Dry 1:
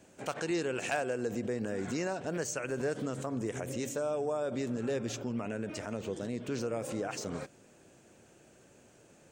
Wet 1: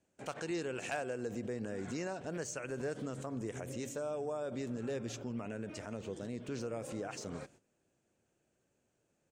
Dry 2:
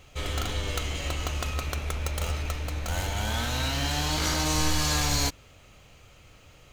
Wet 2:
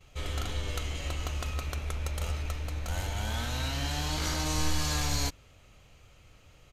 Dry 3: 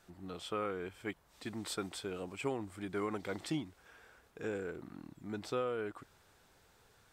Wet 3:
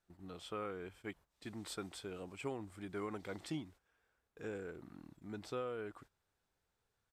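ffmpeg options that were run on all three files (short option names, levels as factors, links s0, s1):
-af "lowshelf=f=92:g=5,agate=range=0.2:threshold=0.00224:ratio=16:detection=peak,aresample=32000,aresample=44100,volume=0.531"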